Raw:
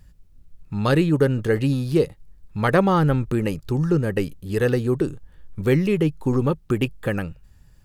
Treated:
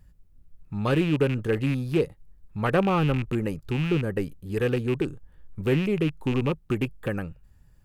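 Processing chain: rattle on loud lows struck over -23 dBFS, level -17 dBFS; peaking EQ 4.8 kHz -5.5 dB 1.9 oct; loudspeaker Doppler distortion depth 0.11 ms; trim -4.5 dB

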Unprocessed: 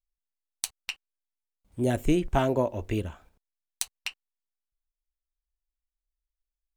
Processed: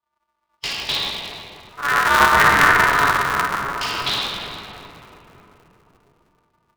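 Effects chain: split-band scrambler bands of 1 kHz; low-pass 4.4 kHz 24 dB/octave; band-stop 1.4 kHz, Q 9.8; simulated room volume 200 m³, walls hard, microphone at 2.2 m; level rider gain up to 7.5 dB; polarity switched at an audio rate 140 Hz; trim -1 dB

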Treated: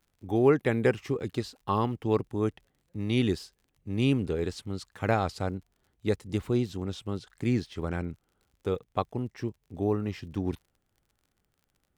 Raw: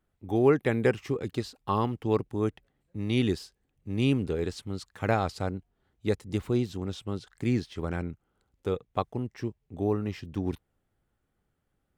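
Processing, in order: crackle 43 per s -52 dBFS

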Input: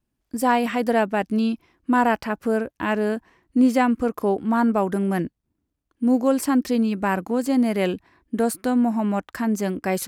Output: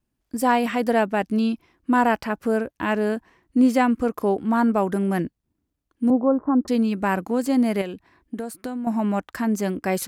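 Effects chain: 6.10–6.68 s: steep low-pass 1.3 kHz 48 dB/octave; 7.81–8.87 s: compression 6:1, threshold -28 dBFS, peak gain reduction 11.5 dB

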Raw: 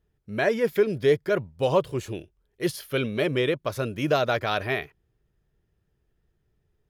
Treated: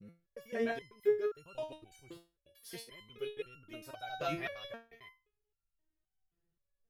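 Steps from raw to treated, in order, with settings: slices played last to first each 91 ms, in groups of 4; resonator arpeggio 3.8 Hz 170–1400 Hz; trim +1 dB

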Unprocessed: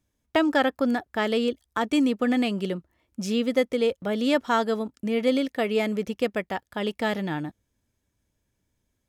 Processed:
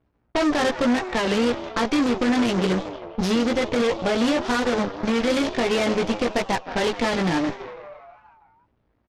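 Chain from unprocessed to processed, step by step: CVSD coder 32 kbps; doubling 17 ms -3 dB; peak limiter -20.5 dBFS, peak gain reduction 11.5 dB; frequency-shifting echo 164 ms, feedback 65%, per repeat +99 Hz, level -14 dB; Chebyshev shaper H 8 -15 dB, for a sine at -18 dBFS; level-controlled noise filter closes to 1.5 kHz, open at -25.5 dBFS; warped record 33 1/3 rpm, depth 160 cents; trim +6 dB

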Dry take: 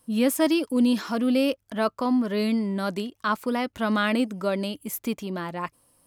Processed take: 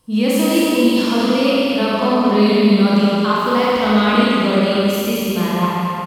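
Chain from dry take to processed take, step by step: fifteen-band graphic EQ 250 Hz -7 dB, 630 Hz -7 dB, 1.6 kHz -8 dB, 10 kHz -7 dB; peak limiter -22 dBFS, peak gain reduction 7 dB; treble shelf 9.2 kHz -10.5 dB; delay 222 ms -4.5 dB; Schroeder reverb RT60 2.2 s, combs from 30 ms, DRR -6.5 dB; trim +8.5 dB

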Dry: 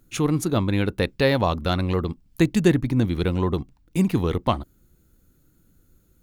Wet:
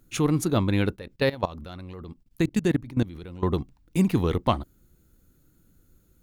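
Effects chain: 0.96–3.43 s: level held to a coarse grid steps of 19 dB; trim -1 dB

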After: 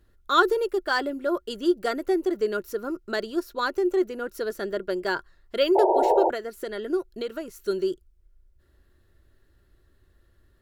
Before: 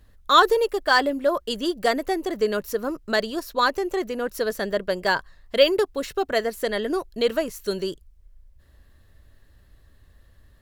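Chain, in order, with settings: 6.34–7.56 s: compression 2.5:1, threshold -25 dBFS, peak gain reduction 6.5 dB; small resonant body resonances 360/1400 Hz, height 13 dB, ringing for 50 ms; 5.75–6.30 s: painted sound noise 330–960 Hz -13 dBFS; trim -7.5 dB

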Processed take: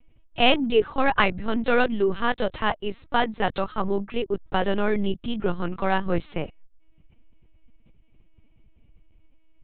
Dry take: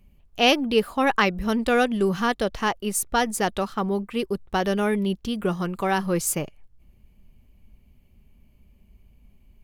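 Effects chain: 1.18–3.75 s: bass shelf 130 Hz -6 dB; LPC vocoder at 8 kHz pitch kept; trim +1 dB

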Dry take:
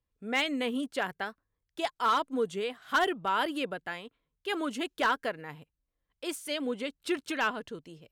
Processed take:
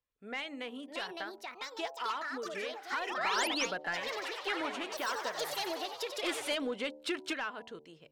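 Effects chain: treble shelf 7.9 kHz -5.5 dB; de-hum 74.94 Hz, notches 13; compression, threshold -32 dBFS, peak gain reduction 9.5 dB; random-step tremolo 1.5 Hz, depth 65%; overdrive pedal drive 12 dB, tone 4.8 kHz, clips at -23.5 dBFS; 3.17–3.66 s: painted sound rise 550–7000 Hz -38 dBFS; ever faster or slower copies 713 ms, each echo +5 st, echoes 2; 3.75–6.55 s: frequency-shifting echo 93 ms, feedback 62%, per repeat +110 Hz, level -8 dB

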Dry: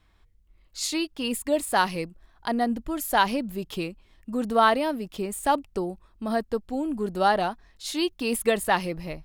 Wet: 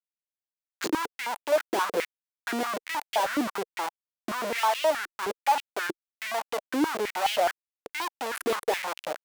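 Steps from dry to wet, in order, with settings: local Wiener filter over 41 samples; Schmitt trigger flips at -34.5 dBFS; step-sequenced high-pass 9.5 Hz 340–2800 Hz

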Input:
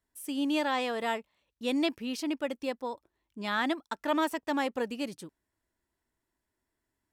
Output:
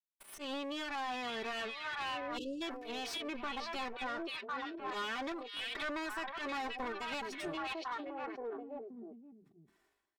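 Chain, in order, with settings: comb filter that takes the minimum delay 2.7 ms; expander -48 dBFS; tempo 0.7×; spectral noise reduction 6 dB; slow attack 201 ms; on a send: repeats whose band climbs or falls 526 ms, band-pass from 3.2 kHz, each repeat -1.4 oct, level -5 dB; on the sum: compression 12:1, threshold -42 dBFS, peak gain reduction 18 dB; comb 5.1 ms, depth 34%; overdrive pedal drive 17 dB, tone 2.9 kHz, clips at -32.5 dBFS; spectral selection erased 2.38–2.62 s, 560–2600 Hz; decay stretcher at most 55 dB/s; trim +2.5 dB

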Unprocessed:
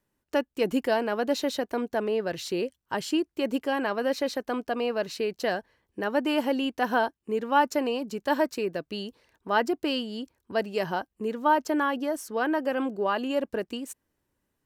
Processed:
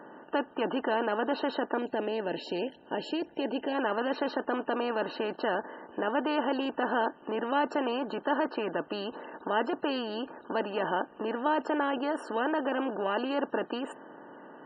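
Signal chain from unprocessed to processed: spectral levelling over time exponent 0.4; 1.78–3.75 s: peaking EQ 1.2 kHz -9.5 dB 0.86 oct; loudest bins only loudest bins 64; trim -9 dB

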